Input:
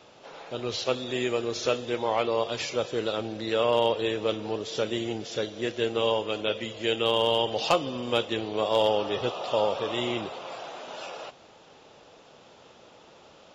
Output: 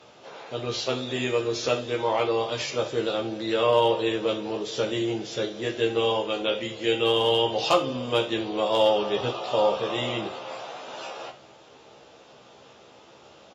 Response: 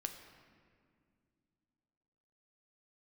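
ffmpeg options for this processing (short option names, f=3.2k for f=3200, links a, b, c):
-filter_complex "[0:a]highpass=51,asplit=2[a][b];[b]adelay=15,volume=-3.5dB[c];[a][c]amix=inputs=2:normalize=0[d];[1:a]atrim=start_sample=2205,atrim=end_sample=3087,asetrate=34398,aresample=44100[e];[d][e]afir=irnorm=-1:irlink=0,volume=1dB"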